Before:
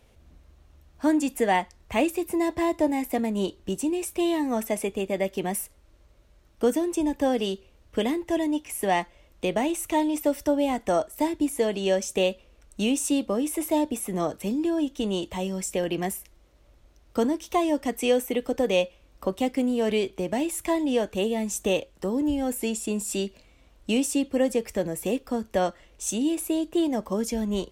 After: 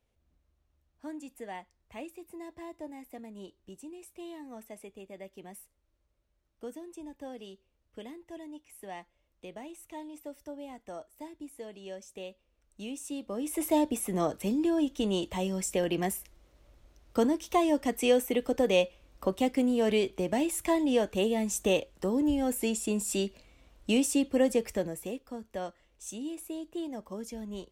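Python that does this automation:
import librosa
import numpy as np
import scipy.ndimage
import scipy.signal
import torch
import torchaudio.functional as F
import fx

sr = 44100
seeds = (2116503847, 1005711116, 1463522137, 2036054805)

y = fx.gain(x, sr, db=fx.line((12.31, -19.0), (13.22, -13.0), (13.64, -2.0), (24.69, -2.0), (25.2, -12.5)))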